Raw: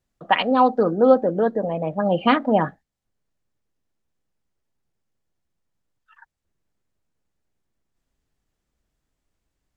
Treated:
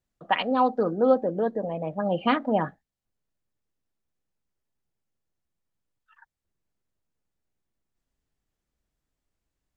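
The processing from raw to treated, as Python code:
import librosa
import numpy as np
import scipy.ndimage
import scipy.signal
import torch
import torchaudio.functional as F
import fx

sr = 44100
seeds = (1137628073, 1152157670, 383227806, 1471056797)

y = fx.peak_eq(x, sr, hz=1400.0, db=-7.5, octaves=0.25, at=(1.13, 1.85))
y = y * librosa.db_to_amplitude(-5.5)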